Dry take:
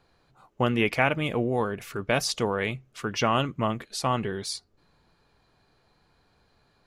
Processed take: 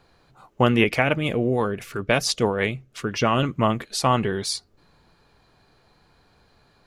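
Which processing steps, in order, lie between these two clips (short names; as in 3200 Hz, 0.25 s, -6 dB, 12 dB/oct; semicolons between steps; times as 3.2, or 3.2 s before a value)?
0.84–3.43 rotary speaker horn 6 Hz; gain +6 dB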